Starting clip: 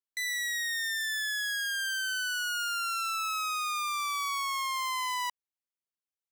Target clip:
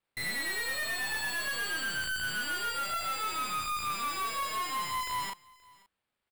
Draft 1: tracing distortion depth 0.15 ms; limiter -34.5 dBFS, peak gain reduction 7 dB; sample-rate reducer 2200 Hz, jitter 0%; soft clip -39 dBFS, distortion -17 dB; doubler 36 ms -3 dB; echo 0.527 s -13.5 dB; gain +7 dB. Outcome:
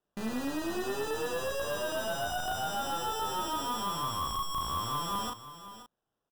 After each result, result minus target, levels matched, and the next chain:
sample-rate reducer: distortion +14 dB; echo-to-direct +11 dB
tracing distortion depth 0.15 ms; limiter -34.5 dBFS, peak gain reduction 7 dB; sample-rate reducer 6100 Hz, jitter 0%; soft clip -39 dBFS, distortion -17 dB; doubler 36 ms -3 dB; echo 0.527 s -13.5 dB; gain +7 dB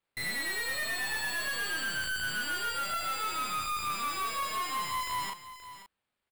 echo-to-direct +11 dB
tracing distortion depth 0.15 ms; limiter -34.5 dBFS, peak gain reduction 7 dB; sample-rate reducer 6100 Hz, jitter 0%; soft clip -39 dBFS, distortion -17 dB; doubler 36 ms -3 dB; echo 0.527 s -24.5 dB; gain +7 dB

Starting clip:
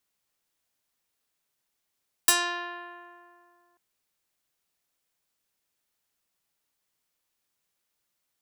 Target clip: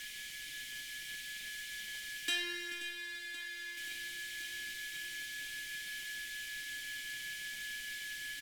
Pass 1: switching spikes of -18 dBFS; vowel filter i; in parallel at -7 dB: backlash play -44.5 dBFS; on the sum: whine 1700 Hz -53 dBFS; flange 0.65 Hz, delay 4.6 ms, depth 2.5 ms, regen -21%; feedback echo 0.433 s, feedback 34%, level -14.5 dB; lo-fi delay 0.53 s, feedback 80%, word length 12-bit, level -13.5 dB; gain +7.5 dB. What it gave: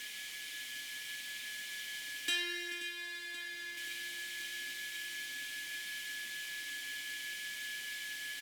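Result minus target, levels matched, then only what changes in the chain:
backlash: distortion -9 dB
change: backlash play -37.5 dBFS

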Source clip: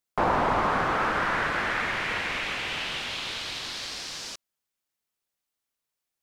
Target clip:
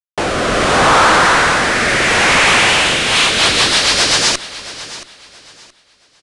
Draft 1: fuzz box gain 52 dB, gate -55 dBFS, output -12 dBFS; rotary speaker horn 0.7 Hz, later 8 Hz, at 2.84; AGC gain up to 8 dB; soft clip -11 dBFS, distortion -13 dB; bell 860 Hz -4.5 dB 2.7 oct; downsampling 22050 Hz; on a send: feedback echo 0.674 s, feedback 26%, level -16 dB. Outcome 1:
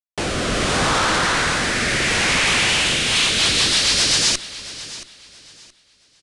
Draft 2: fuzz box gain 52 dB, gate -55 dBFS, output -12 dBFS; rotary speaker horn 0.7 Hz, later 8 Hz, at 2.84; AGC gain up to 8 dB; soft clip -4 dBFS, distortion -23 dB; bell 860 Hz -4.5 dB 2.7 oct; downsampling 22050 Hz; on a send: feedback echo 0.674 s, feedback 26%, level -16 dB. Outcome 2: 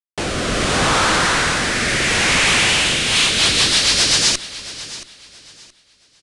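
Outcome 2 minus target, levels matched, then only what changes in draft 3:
1000 Hz band -4.5 dB
change: bell 860 Hz +4.5 dB 2.7 oct

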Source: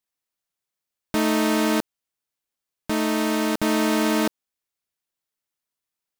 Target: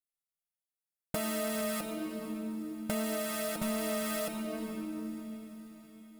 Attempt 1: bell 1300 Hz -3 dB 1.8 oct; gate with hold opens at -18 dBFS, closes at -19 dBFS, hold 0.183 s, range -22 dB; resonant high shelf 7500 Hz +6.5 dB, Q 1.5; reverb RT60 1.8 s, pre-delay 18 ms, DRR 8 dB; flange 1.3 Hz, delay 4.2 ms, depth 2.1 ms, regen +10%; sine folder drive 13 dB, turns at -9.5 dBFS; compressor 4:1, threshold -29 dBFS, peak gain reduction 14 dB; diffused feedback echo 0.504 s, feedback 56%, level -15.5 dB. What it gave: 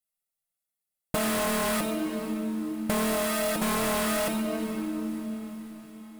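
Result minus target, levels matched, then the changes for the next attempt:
sine folder: distortion +18 dB; compressor: peak gain reduction -4 dB
change: sine folder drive 4 dB, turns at -9.5 dBFS; change: compressor 4:1, threshold -35.5 dBFS, peak gain reduction 18 dB

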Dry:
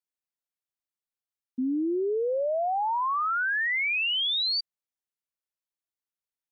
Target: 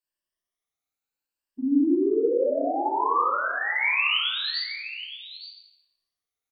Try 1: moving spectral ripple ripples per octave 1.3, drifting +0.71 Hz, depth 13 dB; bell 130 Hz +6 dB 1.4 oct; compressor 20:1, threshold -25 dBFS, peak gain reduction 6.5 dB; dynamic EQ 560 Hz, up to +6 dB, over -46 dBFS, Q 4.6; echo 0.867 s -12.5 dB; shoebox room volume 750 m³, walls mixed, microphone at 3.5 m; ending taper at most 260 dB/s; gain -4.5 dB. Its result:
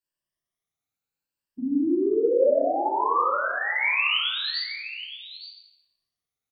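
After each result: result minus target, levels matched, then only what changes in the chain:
125 Hz band +4.0 dB; 250 Hz band -2.5 dB
change: bell 130 Hz -4.5 dB 1.4 oct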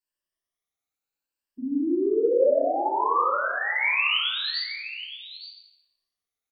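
250 Hz band -4.0 dB
change: dynamic EQ 280 Hz, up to +6 dB, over -46 dBFS, Q 4.6

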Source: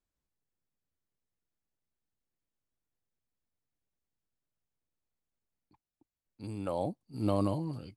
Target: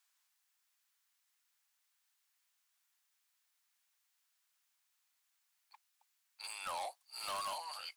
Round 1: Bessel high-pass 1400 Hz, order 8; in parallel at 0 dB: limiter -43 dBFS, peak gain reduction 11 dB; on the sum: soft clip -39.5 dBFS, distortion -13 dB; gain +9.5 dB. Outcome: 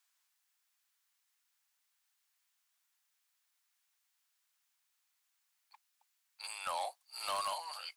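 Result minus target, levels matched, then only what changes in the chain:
soft clip: distortion -6 dB
change: soft clip -46 dBFS, distortion -7 dB

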